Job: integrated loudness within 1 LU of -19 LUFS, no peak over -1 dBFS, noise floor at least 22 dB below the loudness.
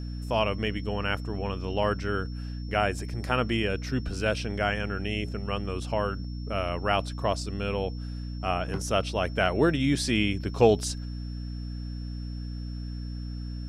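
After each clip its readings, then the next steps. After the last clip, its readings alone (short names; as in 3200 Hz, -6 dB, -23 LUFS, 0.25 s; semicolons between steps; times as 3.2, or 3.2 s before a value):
hum 60 Hz; harmonics up to 300 Hz; hum level -32 dBFS; steady tone 5400 Hz; tone level -51 dBFS; loudness -29.0 LUFS; peak -6.5 dBFS; loudness target -19.0 LUFS
-> notches 60/120/180/240/300 Hz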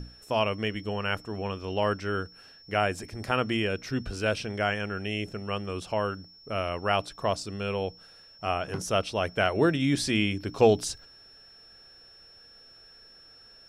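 hum none; steady tone 5400 Hz; tone level -51 dBFS
-> notch 5400 Hz, Q 30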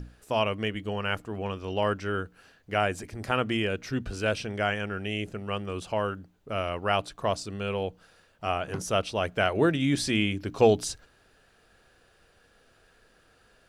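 steady tone none; loudness -29.0 LUFS; peak -8.0 dBFS; loudness target -19.0 LUFS
-> gain +10 dB; limiter -1 dBFS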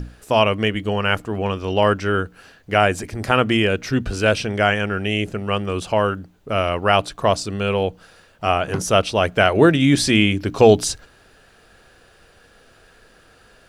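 loudness -19.0 LUFS; peak -1.0 dBFS; noise floor -53 dBFS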